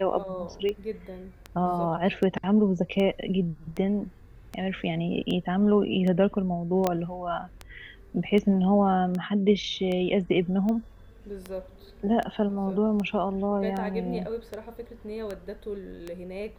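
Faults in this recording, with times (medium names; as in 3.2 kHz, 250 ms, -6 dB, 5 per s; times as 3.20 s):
tick 78 rpm -20 dBFS
6.87 s: pop -10 dBFS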